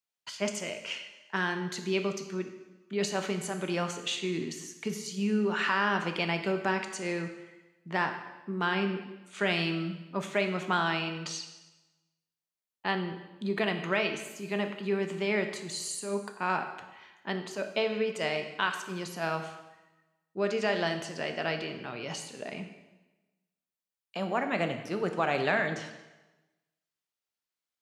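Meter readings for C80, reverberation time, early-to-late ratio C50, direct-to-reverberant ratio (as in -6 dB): 10.0 dB, 1.1 s, 8.5 dB, 6.0 dB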